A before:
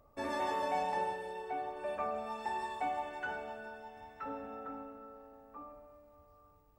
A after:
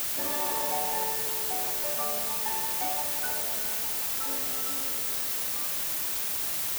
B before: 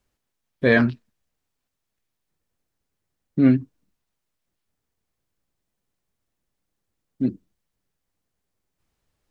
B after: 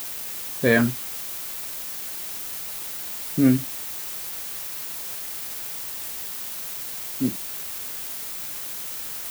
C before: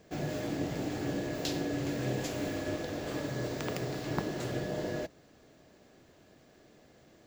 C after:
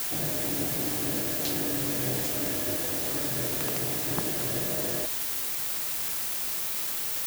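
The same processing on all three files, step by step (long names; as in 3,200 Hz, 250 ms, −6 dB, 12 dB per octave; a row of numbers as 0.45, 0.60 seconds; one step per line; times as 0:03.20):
bit-depth reduction 6 bits, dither triangular
high-shelf EQ 12,000 Hz +8 dB
loudness normalisation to −27 LKFS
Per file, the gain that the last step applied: +1.0, −1.5, +0.5 decibels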